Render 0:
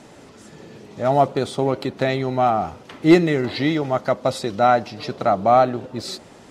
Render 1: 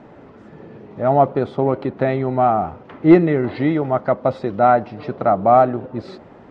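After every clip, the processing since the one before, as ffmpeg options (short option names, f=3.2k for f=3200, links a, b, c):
-af "lowpass=1.6k,volume=2.5dB"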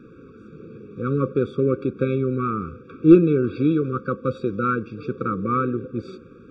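-af "afftfilt=real='re*eq(mod(floor(b*sr/1024/550),2),0)':imag='im*eq(mod(floor(b*sr/1024/550),2),0)':win_size=1024:overlap=0.75,volume=-1dB"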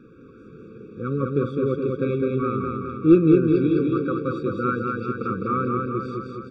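-af "aecho=1:1:207|414|621|828|1035|1242|1449|1656|1863:0.708|0.425|0.255|0.153|0.0917|0.055|0.033|0.0198|0.0119,volume=-3dB"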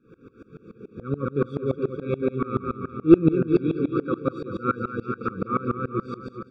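-af "aeval=exprs='val(0)*pow(10,-24*if(lt(mod(-7*n/s,1),2*abs(-7)/1000),1-mod(-7*n/s,1)/(2*abs(-7)/1000),(mod(-7*n/s,1)-2*abs(-7)/1000)/(1-2*abs(-7)/1000))/20)':c=same,volume=4.5dB"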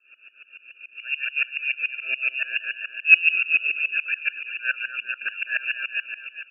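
-af "lowpass=f=2.5k:t=q:w=0.5098,lowpass=f=2.5k:t=q:w=0.6013,lowpass=f=2.5k:t=q:w=0.9,lowpass=f=2.5k:t=q:w=2.563,afreqshift=-2900,volume=-1dB"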